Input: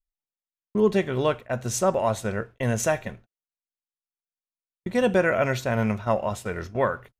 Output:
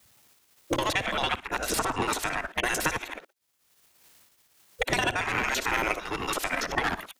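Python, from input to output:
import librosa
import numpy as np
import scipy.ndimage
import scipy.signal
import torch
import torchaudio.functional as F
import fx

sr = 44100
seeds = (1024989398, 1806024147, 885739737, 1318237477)

p1 = fx.local_reverse(x, sr, ms=56.0)
p2 = 10.0 ** (-26.0 / 20.0) * np.tanh(p1 / 10.0 ** (-26.0 / 20.0))
p3 = p1 + (p2 * 10.0 ** (-4.5 / 20.0))
p4 = fx.tremolo_random(p3, sr, seeds[0], hz=3.5, depth_pct=55)
p5 = fx.spec_gate(p4, sr, threshold_db=-15, keep='weak')
p6 = fx.band_squash(p5, sr, depth_pct=100)
y = p6 * 10.0 ** (8.5 / 20.0)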